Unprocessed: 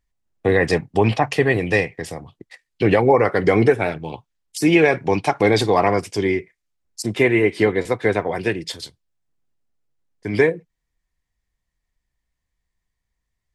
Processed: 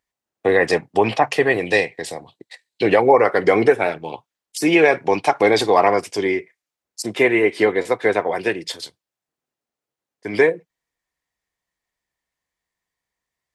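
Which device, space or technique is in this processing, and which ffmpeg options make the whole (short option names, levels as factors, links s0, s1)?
filter by subtraction: -filter_complex "[0:a]asplit=2[s0][s1];[s1]lowpass=600,volume=-1[s2];[s0][s2]amix=inputs=2:normalize=0,asettb=1/sr,asplit=3[s3][s4][s5];[s3]atrim=end=1.654[s6];[s4]atrim=start=1.65:end=2.89,asetpts=PTS-STARTPTS,afade=t=in:d=0.004:c=qsin,afade=t=out:st=1.236:d=0.004:c=qsin,equalizer=f=1250:t=o:w=0.33:g=-7,equalizer=f=4000:t=o:w=0.33:g=10,equalizer=f=8000:t=o:w=0.33:g=5[s7];[s5]atrim=start=2.886[s8];[s6][s7]acrossfade=d=0.004:c1=hsin:c2=qsin[s9];[s9][s8]acrossfade=d=0.004:c1=qsin:c2=hsin,volume=1.12"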